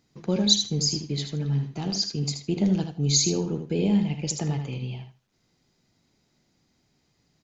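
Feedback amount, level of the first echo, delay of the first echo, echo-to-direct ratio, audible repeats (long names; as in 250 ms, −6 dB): 16%, −7.5 dB, 78 ms, −7.5 dB, 2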